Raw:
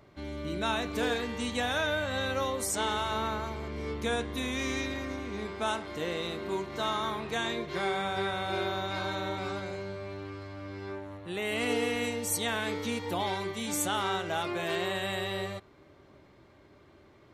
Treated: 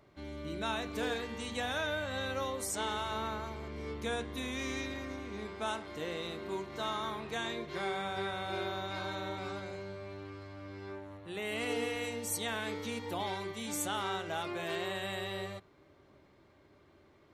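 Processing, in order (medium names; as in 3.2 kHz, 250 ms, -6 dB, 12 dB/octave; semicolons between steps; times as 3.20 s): hum notches 60/120/180/240 Hz; trim -5 dB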